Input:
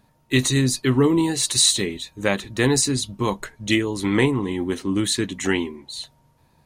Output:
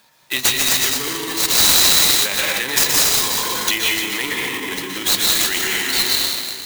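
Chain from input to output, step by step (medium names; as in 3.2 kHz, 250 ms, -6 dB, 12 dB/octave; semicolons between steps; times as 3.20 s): reverberation RT60 2.0 s, pre-delay 114 ms, DRR -2 dB; in parallel at +1.5 dB: compression, threshold -24 dBFS, peak gain reduction 13 dB; on the sum: peak limiter -12 dBFS, peak gain reduction 11 dB; frequency weighting ITU-R 468; sampling jitter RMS 0.026 ms; trim -1 dB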